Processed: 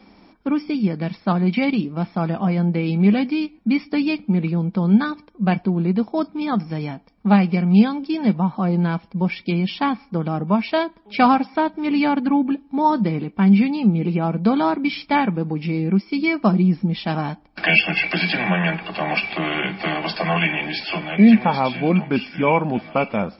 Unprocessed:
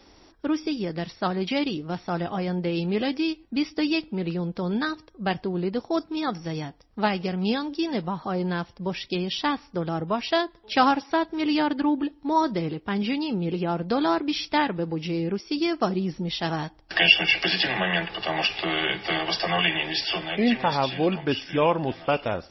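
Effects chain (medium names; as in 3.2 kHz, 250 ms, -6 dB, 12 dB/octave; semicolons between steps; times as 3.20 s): peaking EQ 990 Hz +8 dB 1.7 oct; small resonant body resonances 210/2400 Hz, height 18 dB, ringing for 55 ms; wide varispeed 0.962×; trim -3.5 dB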